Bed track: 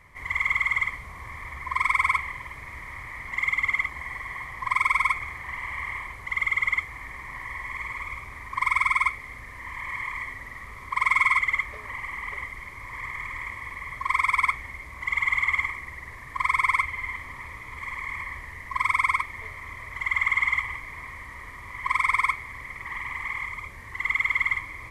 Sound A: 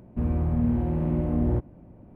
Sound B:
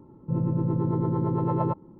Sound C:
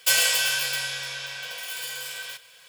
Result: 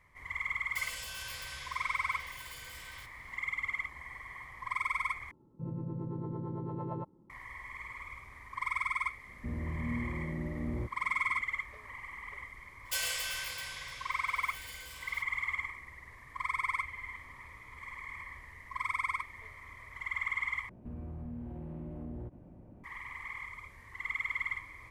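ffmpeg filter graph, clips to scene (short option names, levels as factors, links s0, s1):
-filter_complex "[3:a]asplit=2[s0][s1];[1:a]asplit=2[s2][s3];[0:a]volume=0.282[s4];[s0]alimiter=limit=0.126:level=0:latency=1:release=71[s5];[s2]bandreject=f=710:w=18[s6];[s3]acompressor=threshold=0.00562:ratio=2.5:attack=20:release=33:knee=1:detection=rms[s7];[s4]asplit=3[s8][s9][s10];[s8]atrim=end=5.314[s11];[2:a]atrim=end=1.99,asetpts=PTS-STARTPTS,volume=0.224[s12];[s9]atrim=start=7.296:end=20.694[s13];[s7]atrim=end=2.15,asetpts=PTS-STARTPTS,volume=0.596[s14];[s10]atrim=start=22.836[s15];[s5]atrim=end=2.68,asetpts=PTS-STARTPTS,volume=0.178,afade=t=in:d=0.004:c=hsin,afade=t=out:st=2.676:d=0.004:c=hsin,adelay=690[s16];[s6]atrim=end=2.15,asetpts=PTS-STARTPTS,volume=0.251,afade=t=in:d=0.004:c=hsin,afade=t=out:st=2.146:d=0.004:c=hsin,adelay=9270[s17];[s1]atrim=end=2.68,asetpts=PTS-STARTPTS,volume=0.2,afade=t=in:d=0.004:c=hsin,afade=t=out:st=2.676:d=0.004:c=hsin,adelay=12850[s18];[s11][s12]acrossfade=d=0.004:c1=hsin:c2=hsin[s19];[s19][s13]acrossfade=d=0.004:c1=hsin:c2=hsin[s20];[s20][s14]acrossfade=d=0.004:c1=hsin:c2=hsin[s21];[s21][s15]acrossfade=d=0.004:c1=hsin:c2=hsin[s22];[s22][s16][s17][s18]amix=inputs=4:normalize=0"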